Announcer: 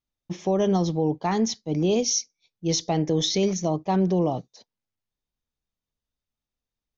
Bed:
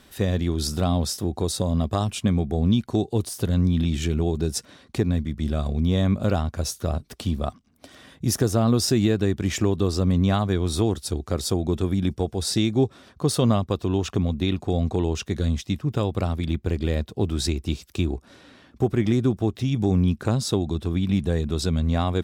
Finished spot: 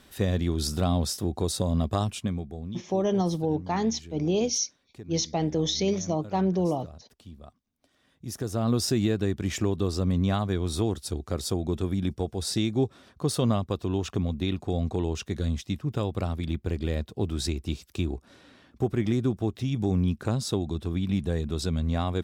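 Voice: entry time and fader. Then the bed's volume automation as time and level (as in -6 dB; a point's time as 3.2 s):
2.45 s, -3.0 dB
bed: 2.03 s -2.5 dB
2.87 s -20.5 dB
7.97 s -20.5 dB
8.71 s -4.5 dB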